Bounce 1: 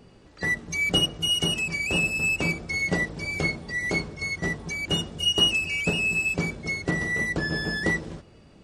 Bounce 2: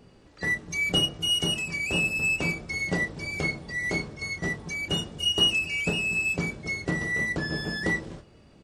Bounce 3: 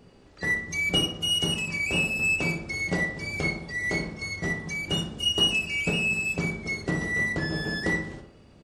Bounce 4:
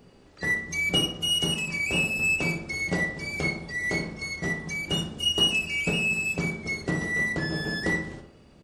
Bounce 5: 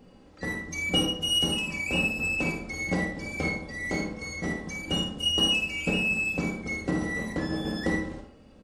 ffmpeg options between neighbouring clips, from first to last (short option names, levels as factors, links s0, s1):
-filter_complex "[0:a]asplit=2[s0][s1];[s1]adelay=28,volume=0.299[s2];[s0][s2]amix=inputs=2:normalize=0,volume=0.75"
-filter_complex "[0:a]asplit=2[s0][s1];[s1]adelay=60,lowpass=f=2600:p=1,volume=0.447,asplit=2[s2][s3];[s3]adelay=60,lowpass=f=2600:p=1,volume=0.53,asplit=2[s4][s5];[s5]adelay=60,lowpass=f=2600:p=1,volume=0.53,asplit=2[s6][s7];[s7]adelay=60,lowpass=f=2600:p=1,volume=0.53,asplit=2[s8][s9];[s9]adelay=60,lowpass=f=2600:p=1,volume=0.53,asplit=2[s10][s11];[s11]adelay=60,lowpass=f=2600:p=1,volume=0.53[s12];[s0][s2][s4][s6][s8][s10][s12]amix=inputs=7:normalize=0"
-af "highshelf=f=12000:g=5,bandreject=f=50:t=h:w=6,bandreject=f=100:t=h:w=6"
-af "tiltshelf=f=1400:g=3,aecho=1:1:3.8:0.46,aecho=1:1:50|76:0.398|0.299,volume=0.75"